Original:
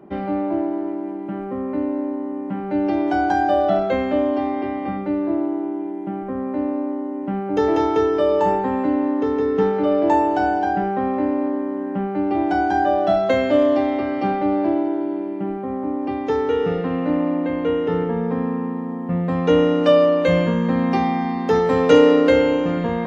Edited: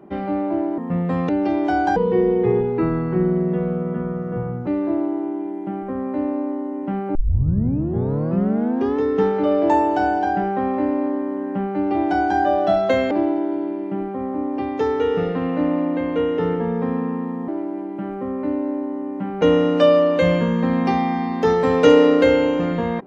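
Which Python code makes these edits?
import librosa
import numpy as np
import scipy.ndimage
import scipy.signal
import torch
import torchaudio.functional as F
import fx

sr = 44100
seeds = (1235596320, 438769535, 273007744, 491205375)

y = fx.edit(x, sr, fx.swap(start_s=0.78, length_s=1.94, other_s=18.97, other_length_s=0.51),
    fx.speed_span(start_s=3.39, length_s=1.68, speed=0.62),
    fx.tape_start(start_s=7.55, length_s=1.85),
    fx.cut(start_s=13.51, length_s=1.09), tone=tone)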